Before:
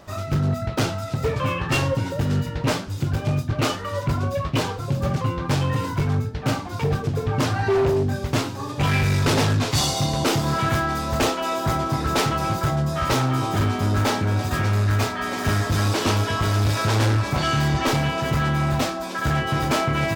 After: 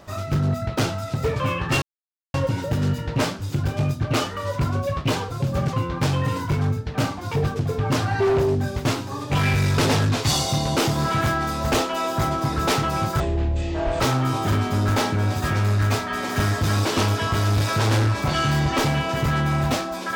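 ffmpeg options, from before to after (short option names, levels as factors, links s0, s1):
-filter_complex "[0:a]asplit=4[s0][s1][s2][s3];[s0]atrim=end=1.82,asetpts=PTS-STARTPTS,afade=t=out:st=1.816:d=0.004:c=hsin,apad=pad_dur=0.52[s4];[s1]atrim=start=1.82:end=12.684,asetpts=PTS-STARTPTS,afade=t=in:d=0.004:c=hsin[s5];[s2]atrim=start=12.68:end=13.09,asetpts=PTS-STARTPTS,asetrate=22491,aresample=44100[s6];[s3]atrim=start=13.086[s7];[s4][s5]concat=n=2:v=0:a=1[s8];[s8][s6]acrossfade=d=0.004:c1=hsin:c2=hsin[s9];[s9][s7]acrossfade=d=0.004:c1=hsin:c2=hsin"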